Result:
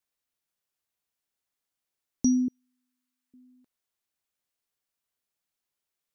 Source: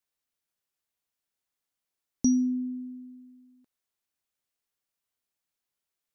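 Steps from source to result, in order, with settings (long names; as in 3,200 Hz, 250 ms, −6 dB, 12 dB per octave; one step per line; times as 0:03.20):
0:02.48–0:03.34: high-pass filter 870 Hz 24 dB per octave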